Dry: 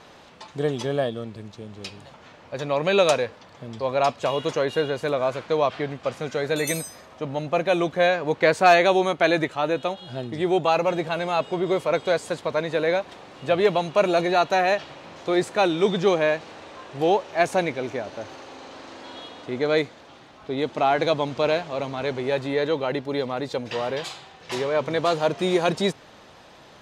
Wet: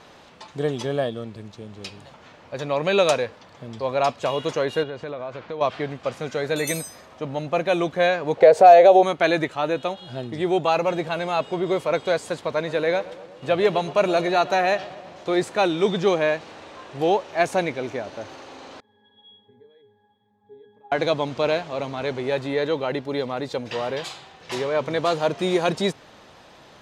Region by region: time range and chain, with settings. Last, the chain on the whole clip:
4.83–5.61 compressor 3:1, threshold -30 dBFS + air absorption 140 m
8.37–9.03 band shelf 570 Hz +15 dB 1.2 oct + compressor 2:1, threshold -13 dBFS
12.55–15.26 expander -40 dBFS + darkening echo 0.119 s, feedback 69%, low-pass 1800 Hz, level -17 dB
18.8–20.92 HPF 91 Hz + compressor 2.5:1, threshold -32 dBFS + octave resonator G#, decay 0.42 s
whole clip: dry

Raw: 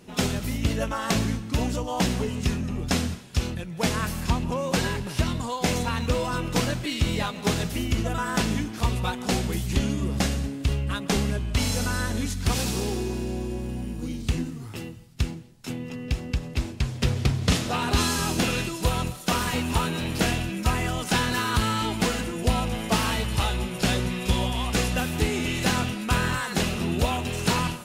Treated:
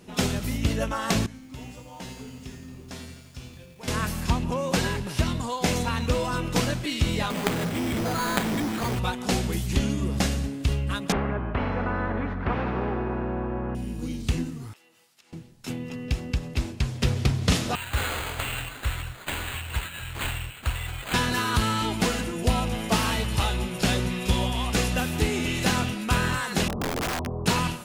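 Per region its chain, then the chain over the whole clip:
1.26–3.88 resonator 130 Hz, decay 0.86 s, mix 90% + lo-fi delay 85 ms, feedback 80%, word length 9-bit, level -10 dB
7.3–8.99 HPF 130 Hz + companded quantiser 2-bit + careless resampling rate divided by 8×, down filtered, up hold
11.12–13.75 LPF 1300 Hz 24 dB/oct + spectral compressor 2:1
14.73–15.33 HPF 720 Hz + compressor 8:1, threshold -55 dBFS
17.75–21.14 Chebyshev band-stop 140–1000 Hz, order 3 + fixed phaser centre 470 Hz, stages 4 + careless resampling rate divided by 8×, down none, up hold
26.68–27.46 Chebyshev low-pass 1100 Hz, order 5 + wrapped overs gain 22.5 dB
whole clip: dry

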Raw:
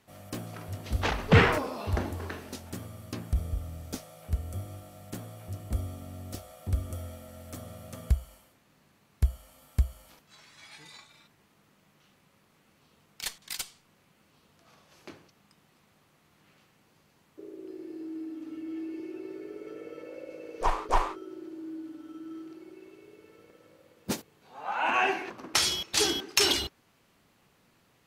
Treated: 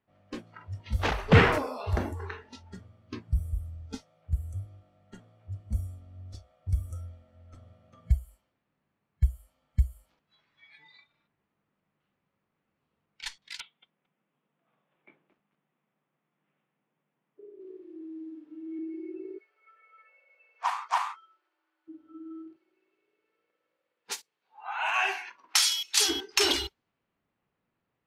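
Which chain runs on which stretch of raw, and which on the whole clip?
13.6–18.79 Chebyshev band-pass 130–3600 Hz, order 5 + companded quantiser 8-bit + lo-fi delay 0.223 s, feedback 35%, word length 9-bit, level -7 dB
19.38–21.88 HPF 830 Hz 24 dB/oct + high shelf 4400 Hz +4.5 dB
22.56–26.09 HPF 1200 Hz 6 dB/oct + high shelf 5000 Hz +8.5 dB
whole clip: low-pass opened by the level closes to 2600 Hz, open at -25.5 dBFS; spectral noise reduction 16 dB; high shelf 5600 Hz -5 dB; gain +1 dB

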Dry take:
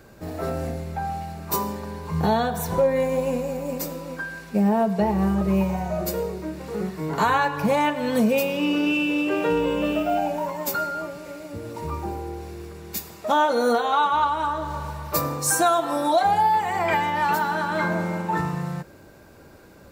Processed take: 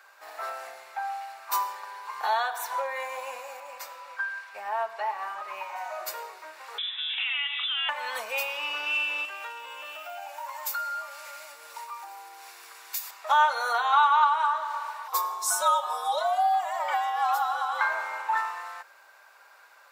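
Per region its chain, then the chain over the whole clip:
3.6–5.76 LPF 2000 Hz 6 dB/oct + tilt +2 dB/oct
6.78–7.89 compressor 4:1, threshold -27 dBFS + inverted band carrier 3700 Hz
9.25–13.11 compressor 3:1, threshold -33 dBFS + high shelf 4000 Hz +11 dB
15.08–17.81 band shelf 2100 Hz -10 dB 1 oct + notch 4500 Hz, Q 9.5 + frequency shift -100 Hz
whole clip: HPF 930 Hz 24 dB/oct; high shelf 3100 Hz -9.5 dB; gain +4 dB

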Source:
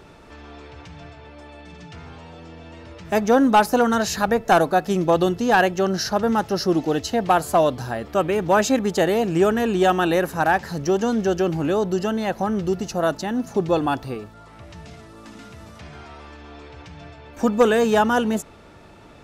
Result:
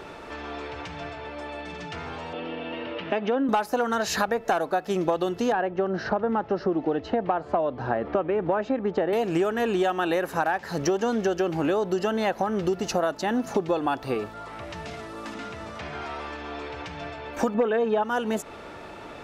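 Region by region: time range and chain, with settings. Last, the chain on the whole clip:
2.33–3.49 compressor 2.5:1, threshold -30 dBFS + speaker cabinet 140–3900 Hz, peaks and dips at 270 Hz +8 dB, 510 Hz +4 dB, 2900 Hz +8 dB
5.52–9.13 tape spacing loss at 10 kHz 41 dB + three-band squash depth 40%
15.34–16.02 LPF 10000 Hz + high shelf 5200 Hz -4 dB
17.54–18.03 LPF 2500 Hz + comb 4.5 ms, depth 86%
whole clip: tone controls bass -10 dB, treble -6 dB; compressor 12:1, threshold -29 dBFS; gain +8 dB

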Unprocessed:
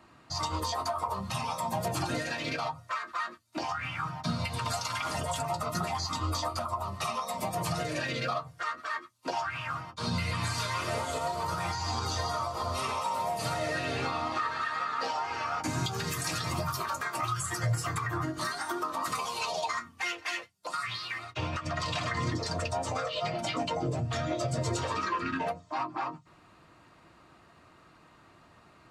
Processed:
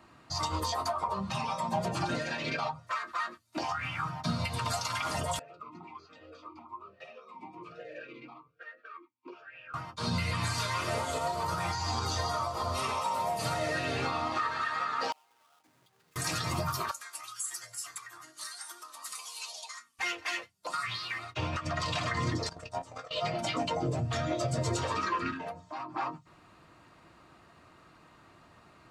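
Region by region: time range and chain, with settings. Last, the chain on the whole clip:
0.92–2.87 air absorption 69 m + comb 5.1 ms, depth 48%
5.39–9.74 air absorption 78 m + vowel sweep e-u 1.2 Hz
15.12–16.16 half-waves squared off + HPF 400 Hz 6 dB/oct + flipped gate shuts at -30 dBFS, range -36 dB
16.91–19.99 steep low-pass 12000 Hz + differentiator
22.49–23.11 HPF 41 Hz 6 dB/oct + gate -31 dBFS, range -18 dB + doubler 18 ms -10.5 dB
25.32–25.93 compressor 2:1, threshold -40 dBFS + de-hum 183 Hz, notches 9
whole clip: dry

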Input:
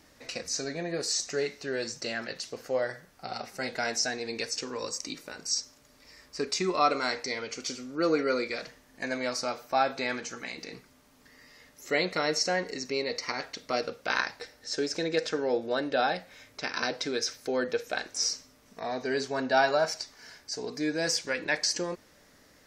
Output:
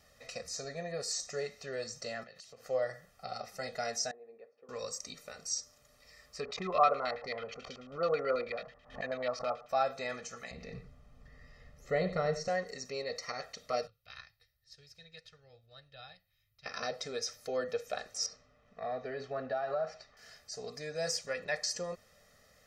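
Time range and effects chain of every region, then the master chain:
2.23–2.66 HPF 55 Hz + compressor 16:1, threshold -43 dBFS + three-band expander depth 40%
4.11–4.69 ladder band-pass 500 Hz, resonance 20% + air absorption 160 m
6.4–9.69 LFO low-pass square 9.2 Hz 980–3200 Hz + backwards sustainer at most 150 dB/s
10.51–12.48 RIAA curve playback + echo 92 ms -12.5 dB
13.87–16.66 EQ curve 130 Hz 0 dB, 210 Hz -23 dB, 560 Hz -25 dB, 1900 Hz -14 dB, 4100 Hz -9 dB, 7400 Hz -20 dB, 13000 Hz +2 dB + upward expander, over -58 dBFS
18.26–20.17 LPF 2500 Hz + compressor, threshold -26 dBFS
whole clip: comb 1.6 ms, depth 92%; dynamic EQ 2900 Hz, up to -5 dB, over -41 dBFS, Q 0.96; gain -7.5 dB

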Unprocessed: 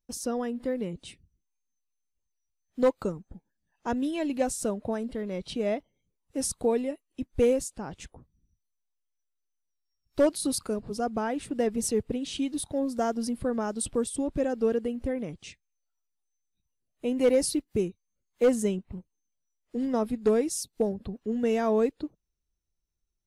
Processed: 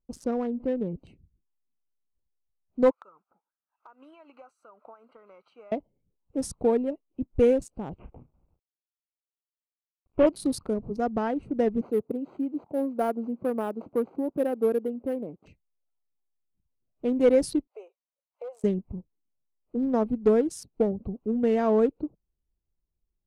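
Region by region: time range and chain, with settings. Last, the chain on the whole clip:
2.91–5.72 resonant high-pass 1300 Hz, resonance Q 5.4 + compressor 10:1, threshold -42 dBFS
7.99–10.27 CVSD 16 kbps + doubler 33 ms -9 dB
11.81–15.46 median filter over 15 samples + HPF 260 Hz + careless resampling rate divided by 4×, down filtered, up hold
17.67–18.64 steep high-pass 540 Hz 48 dB/oct + compressor, threshold -36 dBFS
whole clip: Wiener smoothing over 25 samples; high shelf 3400 Hz -11 dB; gain +3 dB

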